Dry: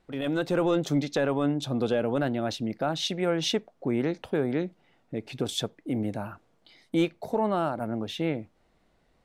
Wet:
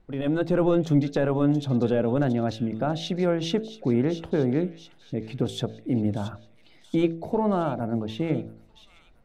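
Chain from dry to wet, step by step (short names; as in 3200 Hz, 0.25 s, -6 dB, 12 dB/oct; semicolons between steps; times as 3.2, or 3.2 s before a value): tilt -2.5 dB/oct; de-hum 55.07 Hz, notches 14; on a send: thin delay 0.677 s, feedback 58%, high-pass 3000 Hz, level -10 dB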